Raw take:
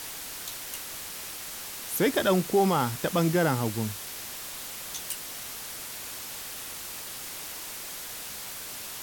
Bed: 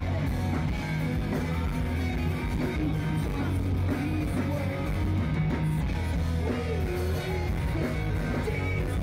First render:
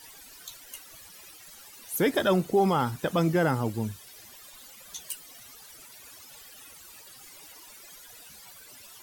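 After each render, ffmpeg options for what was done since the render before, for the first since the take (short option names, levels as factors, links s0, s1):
-af "afftdn=nr=16:nf=-39"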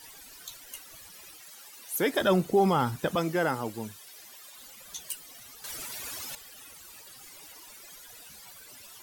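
-filter_complex "[0:a]asettb=1/sr,asplit=3[s0][s1][s2];[s0]atrim=end=1.404[s3];[s1]atrim=start=1.4:end=2.21,asetpts=PTS-STARTPTS,afade=t=in:d=0.004:c=qsin,afade=t=out:st=0.806:d=0.004:c=qsin,highpass=f=360:p=1[s4];[s2]atrim=start=2.206[s5];[s3][s4]acrossfade=d=0.004:c1=hsin:c2=qsin[s6];[s6][s5]acrossfade=d=0.004:c1=qsin:c2=hsin,asettb=1/sr,asplit=3[s7][s8][s9];[s7]atrim=end=3.154[s10];[s8]atrim=start=3.15:end=4.58,asetpts=PTS-STARTPTS,afade=t=in:d=0.004:c=qsin,afade=t=out:st=1.426:d=0.004:c=qsin,highpass=f=410:p=1[s11];[s9]atrim=start=4.576[s12];[s10][s11]acrossfade=d=0.004:c1=hsin:c2=qsin[s13];[s13][s12]acrossfade=d=0.004:c1=qsin:c2=hsin,asplit=3[s14][s15][s16];[s14]atrim=end=5.642[s17];[s15]atrim=start=5.638:end=6.352,asetpts=PTS-STARTPTS,volume=3.16[s18];[s16]atrim=start=6.348[s19];[s17][s18]acrossfade=d=0.004:c1=hsin:c2=hsin[s20];[s20][s19]acrossfade=d=0.004:c1=hsin:c2=hsin"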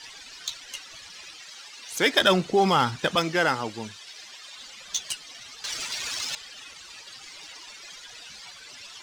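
-filter_complex "[0:a]acrossover=split=6400[s0][s1];[s0]crystalizer=i=10:c=0[s2];[s2][s1]amix=inputs=2:normalize=0,adynamicsmooth=sensitivity=2.5:basefreq=4300"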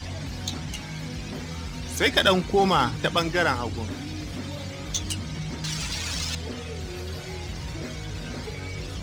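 -filter_complex "[1:a]volume=0.501[s0];[0:a][s0]amix=inputs=2:normalize=0"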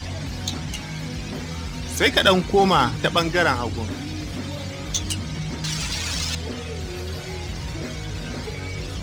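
-af "volume=1.5,alimiter=limit=0.794:level=0:latency=1"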